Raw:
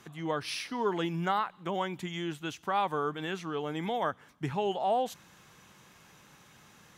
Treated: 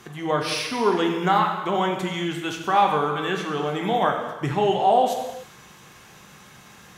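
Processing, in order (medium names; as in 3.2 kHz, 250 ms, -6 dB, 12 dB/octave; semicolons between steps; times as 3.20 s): gated-style reverb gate 430 ms falling, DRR 1.5 dB; trim +7.5 dB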